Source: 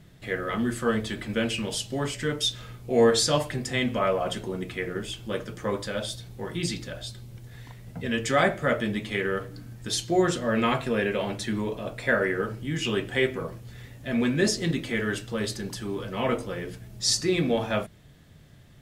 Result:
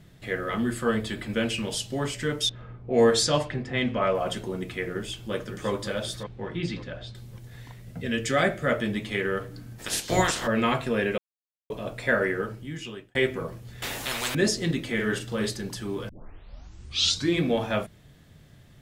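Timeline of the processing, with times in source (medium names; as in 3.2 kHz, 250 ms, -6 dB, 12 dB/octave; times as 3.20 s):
0.61–1.32 s: band-stop 6 kHz, Q 9.4
2.49–4.15 s: level-controlled noise filter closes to 1.1 kHz, open at -16.5 dBFS
4.93–5.70 s: echo throw 560 ms, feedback 30%, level -8.5 dB
6.23–7.15 s: low-pass 3.1 kHz
7.82–8.68 s: peaking EQ 930 Hz -8 dB 0.55 oct
9.78–10.46 s: spectral peaks clipped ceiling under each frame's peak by 25 dB
11.18–11.70 s: mute
12.27–13.15 s: fade out linear
13.82–14.35 s: spectrum-flattening compressor 10:1
14.94–15.50 s: doubling 42 ms -6 dB
16.09 s: tape start 1.31 s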